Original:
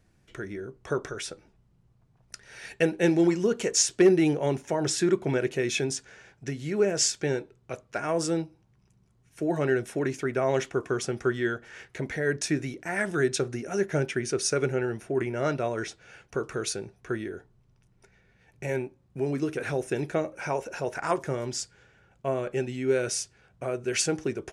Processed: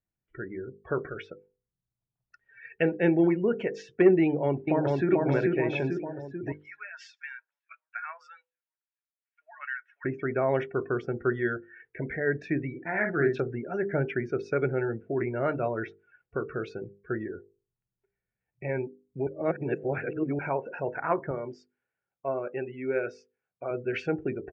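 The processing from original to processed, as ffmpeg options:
-filter_complex "[0:a]asplit=2[s0][s1];[s1]afade=t=in:st=4.23:d=0.01,afade=t=out:st=5.1:d=0.01,aecho=0:1:440|880|1320|1760|2200|2640|3080|3520|3960:0.841395|0.504837|0.302902|0.181741|0.109045|0.0654269|0.0392561|0.0235537|0.0141322[s2];[s0][s2]amix=inputs=2:normalize=0,asettb=1/sr,asplit=3[s3][s4][s5];[s3]atrim=end=6.524[s6];[s4]atrim=start=6.52:end=10.05,asetpts=PTS-STARTPTS,afade=t=in:d=0.004:c=qsin,afade=t=out:st=3.526:d=0.004:c=qsin,highpass=f=1200:w=0.5412,highpass=f=1200:w=1.3066[s7];[s5]atrim=start=10.046[s8];[s6][s7]acrossfade=d=0.004:c1=hsin:c2=qsin[s9];[s9][s8]acrossfade=d=0.004:c1=qsin:c2=hsin,asettb=1/sr,asplit=3[s10][s11][s12];[s10]atrim=end=12.704[s13];[s11]atrim=start=12.7:end=13.4,asetpts=PTS-STARTPTS,afade=t=in:d=0.004:c=qsin,afade=t=out:st=0.696:d=0.004:c=qsin,asplit=2[s14][s15];[s15]adelay=49,volume=0.501[s16];[s14][s16]amix=inputs=2:normalize=0,atrim=end_sample=30870[s17];[s12]atrim=start=13.396[s18];[s13][s17]acrossfade=d=0.004:c1=hsin:c2=qsin[s19];[s19][s18]acrossfade=d=0.004:c1=qsin:c2=hsin,asettb=1/sr,asplit=3[s20][s21][s22];[s20]atrim=end=21.314[s23];[s21]atrim=start=21.31:end=23.71,asetpts=PTS-STARTPTS,afade=t=in:d=0.004:c=qsin,afade=t=out:st=2.396:d=0.004:c=qsin,highpass=f=340:p=1[s24];[s22]atrim=start=23.706[s25];[s23][s24]acrossfade=d=0.004:c1=hsin:c2=qsin[s26];[s26][s25]acrossfade=d=0.004:c1=qsin:c2=hsin,asplit=3[s27][s28][s29];[s27]atrim=end=19.272[s30];[s28]atrim=start=19.268:end=20.392,asetpts=PTS-STARTPTS,areverse[s31];[s29]atrim=start=20.388[s32];[s30][s31]acrossfade=d=0.004:c1=hsin:c2=hsin[s33];[s33][s32]acrossfade=d=0.004:c1=hsin:c2=hsin,afftdn=nr=26:nf=-39,lowpass=f=2600:w=0.5412,lowpass=f=2600:w=1.3066,bandreject=f=50:t=h:w=6,bandreject=f=100:t=h:w=6,bandreject=f=150:t=h:w=6,bandreject=f=200:t=h:w=6,bandreject=f=250:t=h:w=6,bandreject=f=300:t=h:w=6,bandreject=f=350:t=h:w=6,bandreject=f=400:t=h:w=6,bandreject=f=450:t=h:w=6,bandreject=f=500:t=h:w=6"

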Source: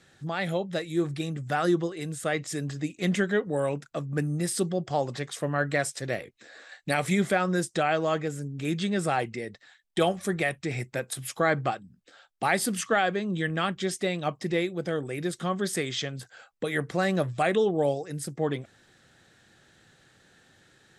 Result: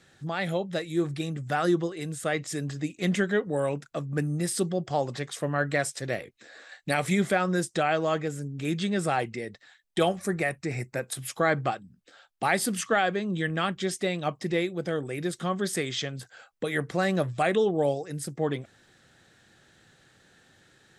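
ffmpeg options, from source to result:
-filter_complex "[0:a]asettb=1/sr,asplit=3[s0][s1][s2];[s0]atrim=end=10.204[s3];[s1]atrim=start=10.2:end=11.03,asetpts=PTS-STARTPTS,afade=t=in:d=0.004:c=qsin,afade=t=out:st=0.826:d=0.004:c=qsin,equalizer=f=3300:t=o:w=0.35:g=-13[s4];[s2]atrim=start=11.026[s5];[s3][s4]acrossfade=d=0.004:c1=hsin:c2=qsin[s6];[s6][s5]acrossfade=d=0.004:c1=qsin:c2=hsin"

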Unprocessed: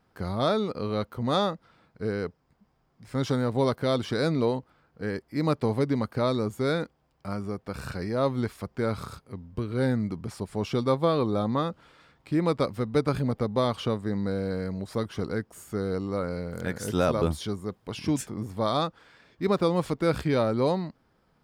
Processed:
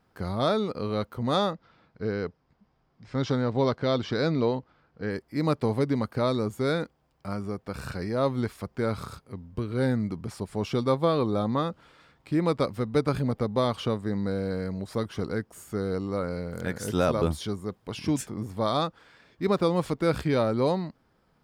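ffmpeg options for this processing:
-filter_complex "[0:a]asettb=1/sr,asplit=3[s0][s1][s2];[s0]atrim=end=1.534[s3];[s1]atrim=start=1.53:end=5.11,asetpts=PTS-STARTPTS,afade=t=in:d=0.004:c=qsin,afade=t=out:st=3.576:d=0.004:c=qsin,lowpass=f=6000:w=0.5412,lowpass=f=6000:w=1.3066[s4];[s2]atrim=start=5.106[s5];[s3][s4]acrossfade=d=0.004:c1=hsin:c2=qsin[s6];[s6][s5]acrossfade=d=0.004:c1=qsin:c2=hsin"

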